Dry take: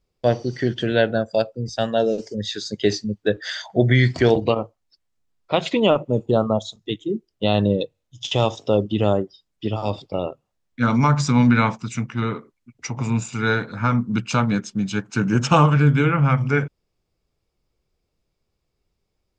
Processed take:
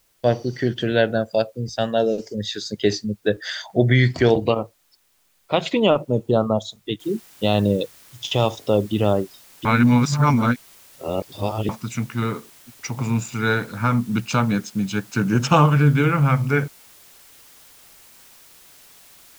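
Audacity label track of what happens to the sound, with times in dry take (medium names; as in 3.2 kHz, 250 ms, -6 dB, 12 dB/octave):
7.000000	7.000000	noise floor step -64 dB -49 dB
9.650000	11.690000	reverse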